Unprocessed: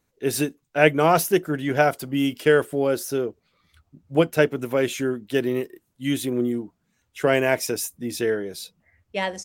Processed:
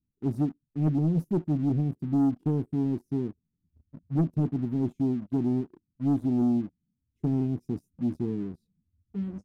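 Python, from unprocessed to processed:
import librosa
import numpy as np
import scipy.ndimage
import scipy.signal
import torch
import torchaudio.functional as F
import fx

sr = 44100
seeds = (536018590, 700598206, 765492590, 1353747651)

y = scipy.signal.sosfilt(scipy.signal.cheby2(4, 40, 560.0, 'lowpass', fs=sr, output='sos'), x)
y = fx.leveller(y, sr, passes=2)
y = y * 10.0 ** (-2.5 / 20.0)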